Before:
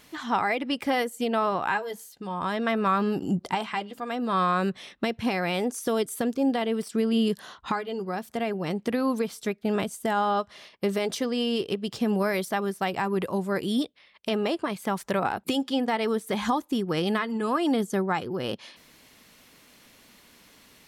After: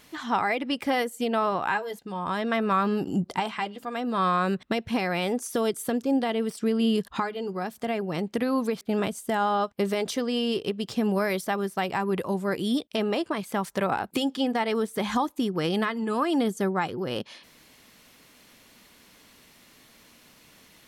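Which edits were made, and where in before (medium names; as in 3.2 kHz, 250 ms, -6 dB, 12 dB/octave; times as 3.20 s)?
shorten pauses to 0.11 s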